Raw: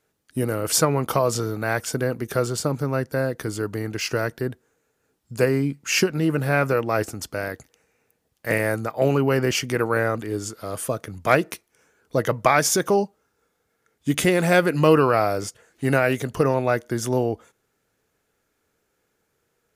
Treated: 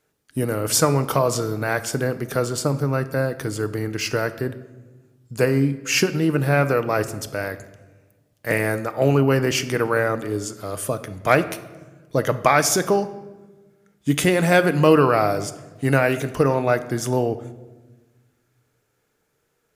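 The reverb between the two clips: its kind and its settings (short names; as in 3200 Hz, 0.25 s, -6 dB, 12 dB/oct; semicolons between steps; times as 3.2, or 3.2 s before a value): shoebox room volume 730 m³, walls mixed, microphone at 0.41 m; gain +1 dB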